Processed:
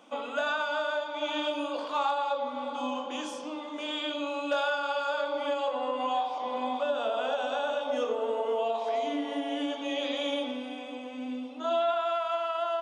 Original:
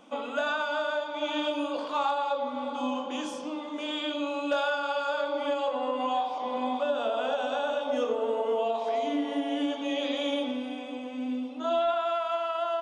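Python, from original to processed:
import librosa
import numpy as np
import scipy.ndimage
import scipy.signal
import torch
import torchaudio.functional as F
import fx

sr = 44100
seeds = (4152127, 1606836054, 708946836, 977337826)

y = fx.highpass(x, sr, hz=320.0, slope=6)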